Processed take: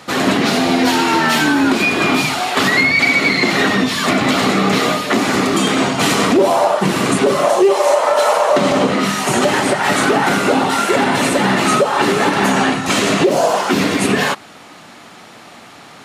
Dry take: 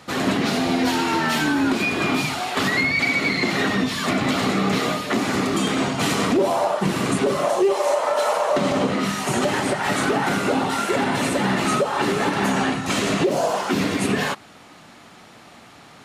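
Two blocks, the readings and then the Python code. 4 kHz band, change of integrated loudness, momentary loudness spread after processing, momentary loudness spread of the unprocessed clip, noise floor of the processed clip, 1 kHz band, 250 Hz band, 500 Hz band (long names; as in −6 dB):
+7.5 dB, +7.0 dB, 3 LU, 3 LU, −39 dBFS, +7.5 dB, +6.0 dB, +7.0 dB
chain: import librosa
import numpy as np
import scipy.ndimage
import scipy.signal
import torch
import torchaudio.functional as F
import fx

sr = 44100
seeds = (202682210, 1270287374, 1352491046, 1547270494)

y = fx.low_shelf(x, sr, hz=120.0, db=-9.0)
y = F.gain(torch.from_numpy(y), 7.5).numpy()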